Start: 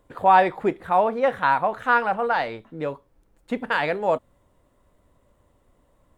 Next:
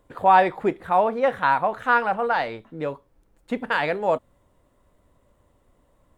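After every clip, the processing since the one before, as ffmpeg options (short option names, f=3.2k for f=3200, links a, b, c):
-af anull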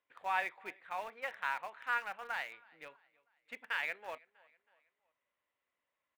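-filter_complex "[0:a]bandpass=f=2.3k:t=q:w=2.3:csg=0,aecho=1:1:322|644|966:0.0708|0.0326|0.015,asplit=2[a][b];[b]aeval=exprs='val(0)*gte(abs(val(0)),0.02)':c=same,volume=-8dB[c];[a][c]amix=inputs=2:normalize=0,volume=-8.5dB"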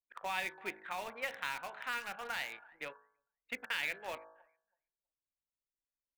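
-filter_complex "[0:a]anlmdn=0.0001,bandreject=f=53.82:t=h:w=4,bandreject=f=107.64:t=h:w=4,bandreject=f=161.46:t=h:w=4,bandreject=f=215.28:t=h:w=4,bandreject=f=269.1:t=h:w=4,bandreject=f=322.92:t=h:w=4,bandreject=f=376.74:t=h:w=4,bandreject=f=430.56:t=h:w=4,bandreject=f=484.38:t=h:w=4,bandreject=f=538.2:t=h:w=4,bandreject=f=592.02:t=h:w=4,bandreject=f=645.84:t=h:w=4,bandreject=f=699.66:t=h:w=4,bandreject=f=753.48:t=h:w=4,bandreject=f=807.3:t=h:w=4,bandreject=f=861.12:t=h:w=4,bandreject=f=914.94:t=h:w=4,bandreject=f=968.76:t=h:w=4,bandreject=f=1.02258k:t=h:w=4,bandreject=f=1.0764k:t=h:w=4,bandreject=f=1.13022k:t=h:w=4,bandreject=f=1.18404k:t=h:w=4,bandreject=f=1.23786k:t=h:w=4,bandreject=f=1.29168k:t=h:w=4,bandreject=f=1.3455k:t=h:w=4,bandreject=f=1.39932k:t=h:w=4,bandreject=f=1.45314k:t=h:w=4,bandreject=f=1.50696k:t=h:w=4,bandreject=f=1.56078k:t=h:w=4,bandreject=f=1.6146k:t=h:w=4,bandreject=f=1.66842k:t=h:w=4,bandreject=f=1.72224k:t=h:w=4,acrossover=split=350|3000[a][b][c];[b]acompressor=threshold=-50dB:ratio=5[d];[a][d][c]amix=inputs=3:normalize=0,volume=9.5dB"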